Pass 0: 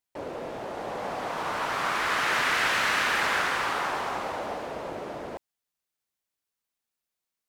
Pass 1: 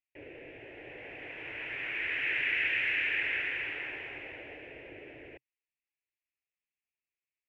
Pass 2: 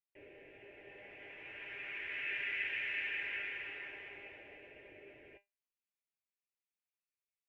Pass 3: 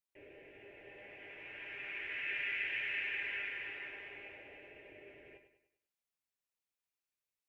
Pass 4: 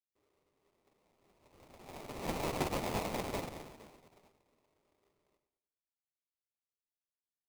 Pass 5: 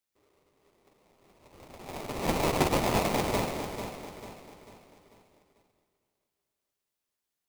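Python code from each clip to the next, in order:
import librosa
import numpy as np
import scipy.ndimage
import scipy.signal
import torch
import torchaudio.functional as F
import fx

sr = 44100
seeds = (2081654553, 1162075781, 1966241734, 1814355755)

y1 = fx.curve_eq(x, sr, hz=(130.0, 200.0, 300.0, 430.0, 1200.0, 1800.0, 2600.0, 4200.0, 11000.0), db=(0, -17, 0, -2, -22, 5, 11, -22, -29))
y1 = y1 * librosa.db_to_amplitude(-8.5)
y2 = fx.comb_fb(y1, sr, f0_hz=200.0, decay_s=0.18, harmonics='all', damping=0.0, mix_pct=80)
y3 = fx.echo_feedback(y2, sr, ms=99, feedback_pct=45, wet_db=-10.0)
y4 = fx.sample_hold(y3, sr, seeds[0], rate_hz=1600.0, jitter_pct=20)
y4 = fx.upward_expand(y4, sr, threshold_db=-54.0, expansion=2.5)
y4 = y4 * librosa.db_to_amplitude(6.0)
y5 = fx.echo_feedback(y4, sr, ms=444, feedback_pct=42, wet_db=-9.5)
y5 = y5 * librosa.db_to_amplitude(9.0)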